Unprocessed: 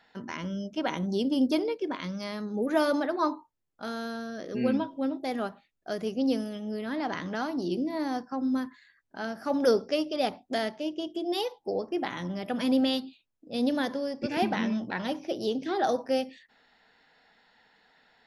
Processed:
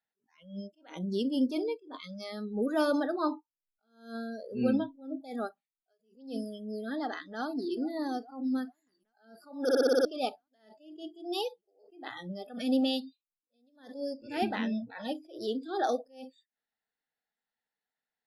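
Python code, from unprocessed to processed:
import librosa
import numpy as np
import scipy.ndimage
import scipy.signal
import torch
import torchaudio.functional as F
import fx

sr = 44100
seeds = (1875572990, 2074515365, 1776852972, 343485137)

y = fx.low_shelf(x, sr, hz=290.0, db=4.0, at=(2.37, 5.2))
y = fx.echo_throw(y, sr, start_s=7.14, length_s=0.6, ms=430, feedback_pct=80, wet_db=-13.0)
y = fx.edit(y, sr, fx.stutter_over(start_s=9.63, slice_s=0.06, count=7), tone=tone)
y = fx.notch(y, sr, hz=980.0, q=17.0)
y = fx.noise_reduce_blind(y, sr, reduce_db=28)
y = fx.attack_slew(y, sr, db_per_s=130.0)
y = y * librosa.db_to_amplitude(-2.5)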